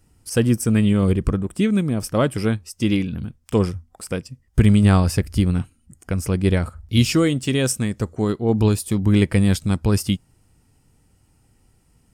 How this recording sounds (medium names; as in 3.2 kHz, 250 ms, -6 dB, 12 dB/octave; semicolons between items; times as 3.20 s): noise floor -61 dBFS; spectral tilt -7.0 dB/octave